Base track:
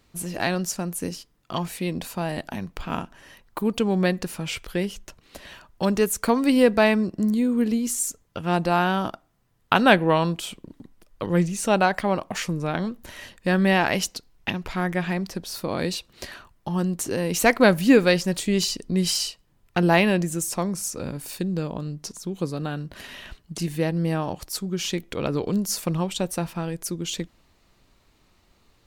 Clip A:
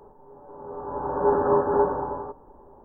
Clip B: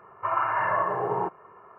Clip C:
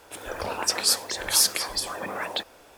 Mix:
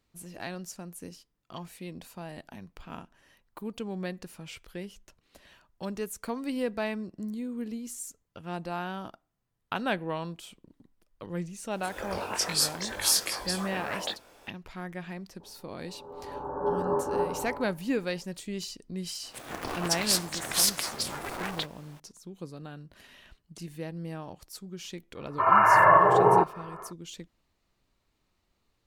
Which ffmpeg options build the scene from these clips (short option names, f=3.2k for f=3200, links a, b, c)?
-filter_complex "[3:a]asplit=2[a][b];[0:a]volume=-13.5dB[c];[a]flanger=delay=20:depth=2.1:speed=2.4[d];[b]aeval=exprs='val(0)*sgn(sin(2*PI*190*n/s))':c=same[e];[2:a]dynaudnorm=f=210:g=3:m=11dB[f];[d]atrim=end=2.77,asetpts=PTS-STARTPTS,volume=-1dB,afade=t=in:d=0.004:c=hsin,afade=t=out:st=2.766:d=0.004:c=hsin,adelay=11710[g];[1:a]atrim=end=2.84,asetpts=PTS-STARTPTS,volume=-7.5dB,afade=t=in:d=0.004:c=hsin,afade=t=out:st=2.836:d=0.004:c=hsin,adelay=679140S[h];[e]atrim=end=2.77,asetpts=PTS-STARTPTS,volume=-4dB,afade=t=in:d=0.004:c=hsin,afade=t=out:st=2.766:d=0.004:c=hsin,adelay=19230[i];[f]atrim=end=1.78,asetpts=PTS-STARTPTS,volume=-2.5dB,afade=t=in:d=0.004:c=hsin,afade=t=out:st=1.776:d=0.004:c=hsin,adelay=25150[j];[c][g][h][i][j]amix=inputs=5:normalize=0"